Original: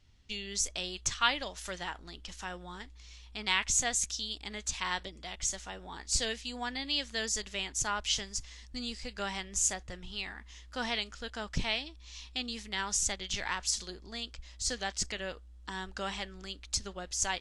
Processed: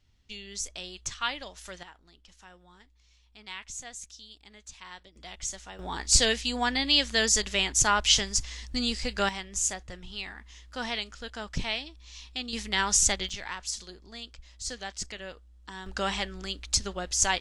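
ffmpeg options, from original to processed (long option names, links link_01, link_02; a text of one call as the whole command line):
ffmpeg -i in.wav -af "asetnsamples=nb_out_samples=441:pad=0,asendcmd='1.83 volume volume -11.5dB;5.16 volume volume -1.5dB;5.79 volume volume 9.5dB;9.29 volume volume 1dB;12.53 volume volume 8dB;13.29 volume volume -2.5dB;15.86 volume volume 7dB',volume=-3dB" out.wav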